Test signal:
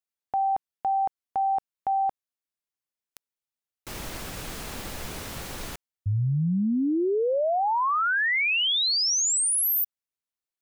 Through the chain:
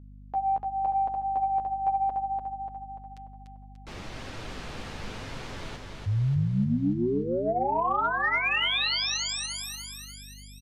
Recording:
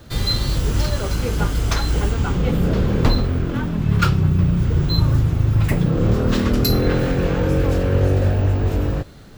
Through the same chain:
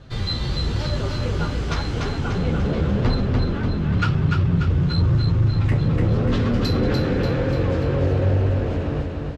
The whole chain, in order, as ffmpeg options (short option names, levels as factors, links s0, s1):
-filter_complex "[0:a]lowpass=4500,bandreject=f=409.6:t=h:w=4,bandreject=f=819.2:t=h:w=4,bandreject=f=1228.8:t=h:w=4,bandreject=f=1638.4:t=h:w=4,bandreject=f=2048:t=h:w=4,bandreject=f=2457.6:t=h:w=4,bandreject=f=2867.2:t=h:w=4,bandreject=f=3276.8:t=h:w=4,flanger=delay=7.4:depth=6.8:regen=8:speed=0.94:shape=sinusoidal,asplit=2[s0][s1];[s1]aecho=0:1:293|586|879|1172|1465|1758|2051:0.631|0.341|0.184|0.0994|0.0537|0.029|0.0156[s2];[s0][s2]amix=inputs=2:normalize=0,asoftclip=type=tanh:threshold=0.316,aeval=exprs='val(0)+0.00501*(sin(2*PI*50*n/s)+sin(2*PI*2*50*n/s)/2+sin(2*PI*3*50*n/s)/3+sin(2*PI*4*50*n/s)/4+sin(2*PI*5*50*n/s)/5)':c=same"